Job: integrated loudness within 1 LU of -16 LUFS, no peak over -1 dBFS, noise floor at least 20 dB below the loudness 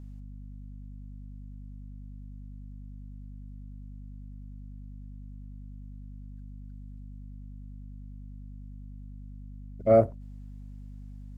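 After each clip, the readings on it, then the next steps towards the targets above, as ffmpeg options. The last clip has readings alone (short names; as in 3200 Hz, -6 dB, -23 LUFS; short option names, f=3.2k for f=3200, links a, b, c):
hum 50 Hz; harmonics up to 250 Hz; hum level -41 dBFS; loudness -24.0 LUFS; peak -10.5 dBFS; loudness target -16.0 LUFS
-> -af "bandreject=f=50:t=h:w=6,bandreject=f=100:t=h:w=6,bandreject=f=150:t=h:w=6,bandreject=f=200:t=h:w=6,bandreject=f=250:t=h:w=6"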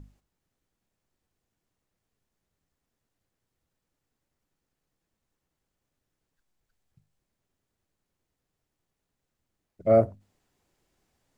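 hum none; loudness -24.0 LUFS; peak -10.5 dBFS; loudness target -16.0 LUFS
-> -af "volume=8dB"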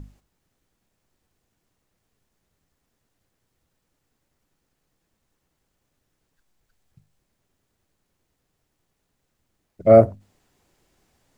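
loudness -16.0 LUFS; peak -2.5 dBFS; noise floor -76 dBFS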